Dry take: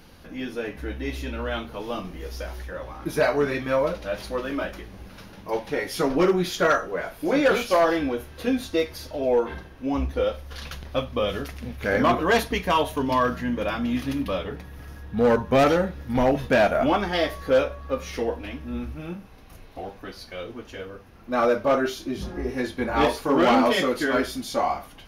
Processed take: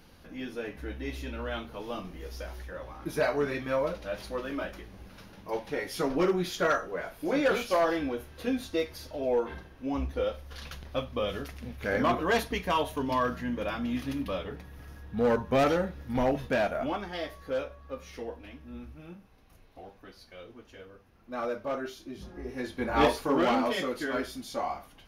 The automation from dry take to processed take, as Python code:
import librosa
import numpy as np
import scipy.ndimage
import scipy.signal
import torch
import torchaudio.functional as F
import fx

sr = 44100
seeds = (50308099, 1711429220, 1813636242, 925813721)

y = fx.gain(x, sr, db=fx.line((16.27, -6.0), (17.08, -12.0), (22.32, -12.0), (23.06, -2.0), (23.6, -8.5)))